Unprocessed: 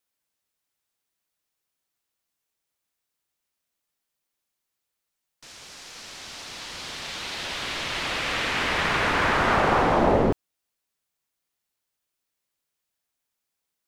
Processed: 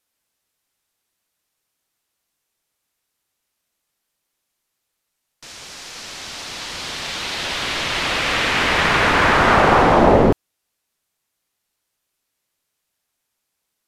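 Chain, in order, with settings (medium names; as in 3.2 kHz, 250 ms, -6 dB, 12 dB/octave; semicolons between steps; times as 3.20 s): trim +7.5 dB; Vorbis 128 kbps 32 kHz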